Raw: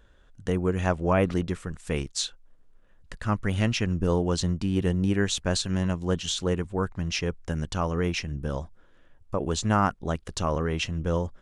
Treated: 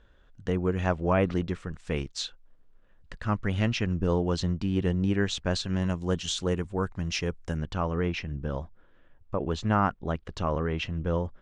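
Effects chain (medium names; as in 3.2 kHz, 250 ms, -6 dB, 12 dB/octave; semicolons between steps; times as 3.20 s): low-pass 5 kHz 12 dB/octave, from 5.82 s 9.3 kHz, from 7.57 s 3.3 kHz; trim -1.5 dB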